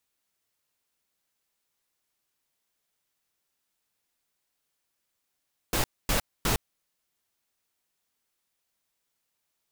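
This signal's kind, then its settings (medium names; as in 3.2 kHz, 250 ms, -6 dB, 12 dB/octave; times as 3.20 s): noise bursts pink, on 0.11 s, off 0.25 s, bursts 3, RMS -25 dBFS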